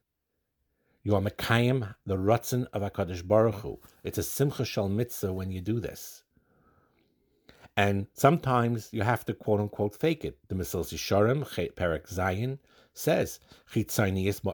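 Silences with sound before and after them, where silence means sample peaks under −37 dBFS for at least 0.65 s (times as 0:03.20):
0:06.12–0:07.49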